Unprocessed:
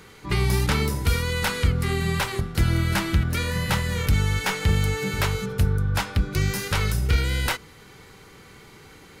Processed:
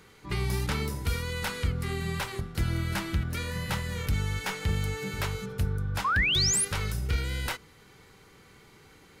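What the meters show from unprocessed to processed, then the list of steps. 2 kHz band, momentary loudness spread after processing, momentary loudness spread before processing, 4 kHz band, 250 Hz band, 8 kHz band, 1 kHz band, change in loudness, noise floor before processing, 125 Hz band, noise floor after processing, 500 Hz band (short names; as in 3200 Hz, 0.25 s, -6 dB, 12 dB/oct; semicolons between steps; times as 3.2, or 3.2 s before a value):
-4.5 dB, 10 LU, 3 LU, -2.0 dB, -7.5 dB, +1.0 dB, -4.5 dB, -5.5 dB, -48 dBFS, -7.5 dB, -56 dBFS, -7.5 dB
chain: painted sound rise, 6.04–6.65, 1000–11000 Hz -18 dBFS; gain -7.5 dB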